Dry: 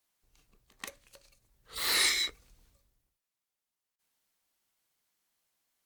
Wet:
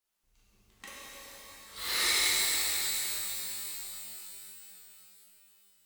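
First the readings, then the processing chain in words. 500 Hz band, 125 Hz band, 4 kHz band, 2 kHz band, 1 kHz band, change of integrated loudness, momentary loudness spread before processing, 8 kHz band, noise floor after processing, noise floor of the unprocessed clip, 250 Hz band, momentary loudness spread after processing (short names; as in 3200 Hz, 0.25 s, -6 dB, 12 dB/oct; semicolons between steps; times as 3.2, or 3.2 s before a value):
+1.5 dB, n/a, +2.0 dB, +1.5 dB, +2.5 dB, -1.5 dB, 21 LU, +6.0 dB, -71 dBFS, under -85 dBFS, +2.0 dB, 22 LU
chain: flange 0.92 Hz, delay 2.1 ms, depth 3.5 ms, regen +68%; shimmer reverb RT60 3.7 s, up +12 st, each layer -2 dB, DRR -8.5 dB; gain -3.5 dB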